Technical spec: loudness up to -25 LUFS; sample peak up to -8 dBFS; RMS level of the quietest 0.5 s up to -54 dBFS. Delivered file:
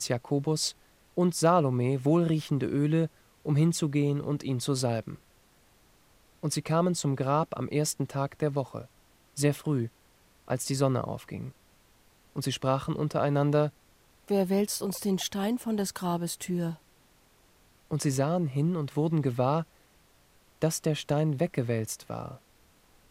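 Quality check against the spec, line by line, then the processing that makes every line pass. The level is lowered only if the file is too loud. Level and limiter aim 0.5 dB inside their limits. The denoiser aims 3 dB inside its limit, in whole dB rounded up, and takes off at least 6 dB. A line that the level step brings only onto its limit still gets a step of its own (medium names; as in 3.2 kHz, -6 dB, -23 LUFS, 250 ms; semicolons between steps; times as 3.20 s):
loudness -29.0 LUFS: pass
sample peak -9.5 dBFS: pass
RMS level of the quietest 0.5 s -62 dBFS: pass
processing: none needed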